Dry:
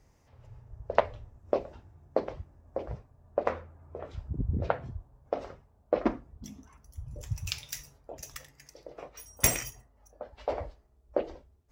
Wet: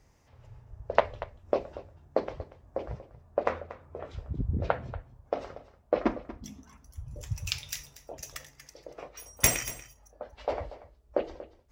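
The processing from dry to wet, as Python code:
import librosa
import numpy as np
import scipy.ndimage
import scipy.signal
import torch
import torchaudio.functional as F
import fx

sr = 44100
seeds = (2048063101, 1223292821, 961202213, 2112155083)

p1 = fx.peak_eq(x, sr, hz=2900.0, db=3.0, octaves=2.9)
y = p1 + fx.echo_single(p1, sr, ms=236, db=-16.0, dry=0)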